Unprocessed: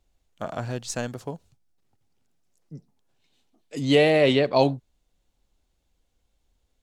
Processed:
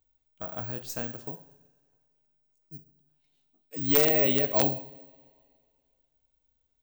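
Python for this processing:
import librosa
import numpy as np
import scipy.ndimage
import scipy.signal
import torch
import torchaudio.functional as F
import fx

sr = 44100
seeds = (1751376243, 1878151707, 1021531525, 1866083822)

y = fx.rev_double_slope(x, sr, seeds[0], early_s=0.66, late_s=2.2, knee_db=-18, drr_db=7.0)
y = (np.mod(10.0 ** (6.5 / 20.0) * y + 1.0, 2.0) - 1.0) / 10.0 ** (6.5 / 20.0)
y = (np.kron(scipy.signal.resample_poly(y, 1, 2), np.eye(2)[0]) * 2)[:len(y)]
y = y * 10.0 ** (-8.5 / 20.0)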